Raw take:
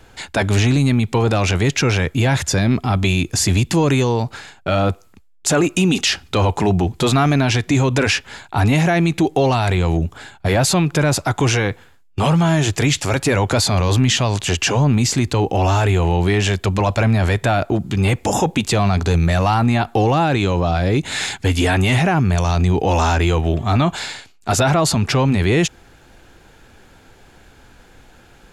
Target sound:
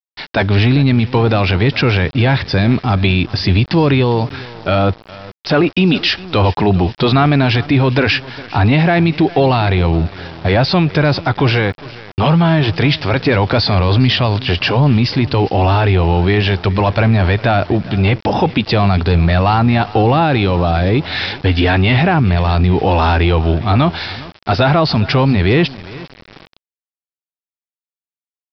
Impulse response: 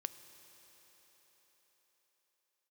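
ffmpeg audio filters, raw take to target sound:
-af "aecho=1:1:407|814|1221|1628:0.119|0.0523|0.023|0.0101,aresample=11025,aeval=exprs='val(0)*gte(abs(val(0)),0.0211)':c=same,aresample=44100,volume=1.5"

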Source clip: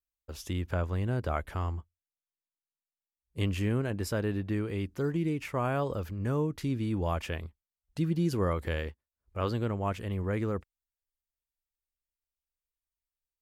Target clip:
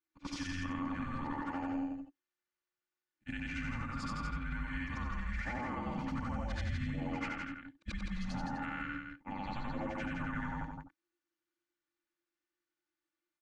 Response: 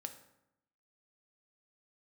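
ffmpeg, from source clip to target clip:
-af "afftfilt=real='re':imag='-im':win_size=8192:overlap=0.75,lowpass=f=7500:w=0.5412,lowpass=f=7500:w=1.3066,agate=range=0.282:threshold=0.00355:ratio=16:detection=peak,equalizer=f=1900:t=o:w=1.3:g=12,aecho=1:1:3.3:0.58,acompressor=threshold=0.00794:ratio=12,alimiter=level_in=7.08:limit=0.0631:level=0:latency=1:release=132,volume=0.141,afreqshift=-360,aecho=1:1:165:0.531,volume=3.76"

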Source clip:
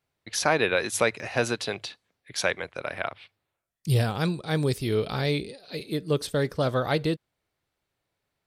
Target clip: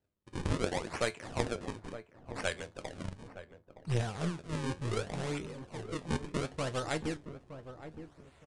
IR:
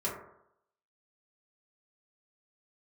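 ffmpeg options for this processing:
-filter_complex "[0:a]equalizer=f=68:t=o:w=0.78:g=7,areverse,acompressor=mode=upward:threshold=0.0316:ratio=2.5,areverse,acrusher=samples=37:mix=1:aa=0.000001:lfo=1:lforange=59.2:lforate=0.69,flanger=delay=9.6:depth=2.6:regen=68:speed=0.57:shape=triangular,aeval=exprs='0.251*(cos(1*acos(clip(val(0)/0.251,-1,1)))-cos(1*PI/2))+0.0794*(cos(2*acos(clip(val(0)/0.251,-1,1)))-cos(2*PI/2))+0.0316*(cos(3*acos(clip(val(0)/0.251,-1,1)))-cos(3*PI/2))':c=same,asplit=2[s0][s1];[s1]adelay=917,lowpass=f=900:p=1,volume=0.299,asplit=2[s2][s3];[s3]adelay=917,lowpass=f=900:p=1,volume=0.31,asplit=2[s4][s5];[s5]adelay=917,lowpass=f=900:p=1,volume=0.31[s6];[s2][s4][s6]amix=inputs=3:normalize=0[s7];[s0][s7]amix=inputs=2:normalize=0,aresample=22050,aresample=44100,volume=0.841"

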